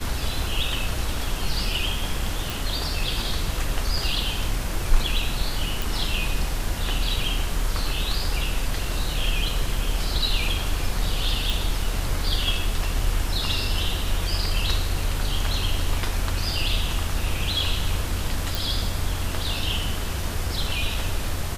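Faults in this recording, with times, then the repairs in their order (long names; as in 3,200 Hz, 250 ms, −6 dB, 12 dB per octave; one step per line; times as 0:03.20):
0:02.50: click
0:05.82: click
0:11.50: click
0:18.55: click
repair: click removal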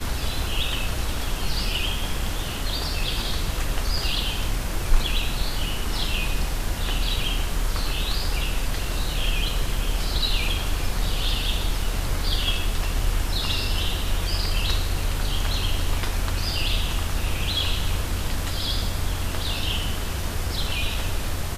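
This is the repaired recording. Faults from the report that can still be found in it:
none of them is left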